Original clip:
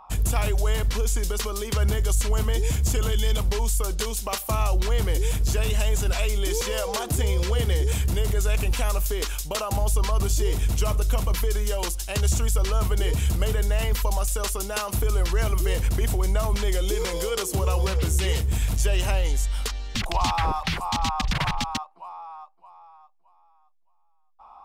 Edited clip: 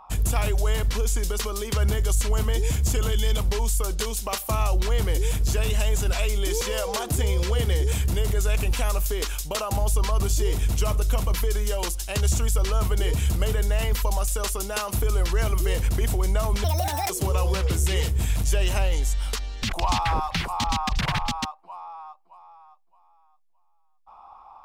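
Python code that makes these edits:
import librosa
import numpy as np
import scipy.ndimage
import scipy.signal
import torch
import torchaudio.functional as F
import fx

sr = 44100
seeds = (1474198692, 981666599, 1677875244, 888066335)

y = fx.edit(x, sr, fx.speed_span(start_s=16.64, length_s=0.78, speed=1.71), tone=tone)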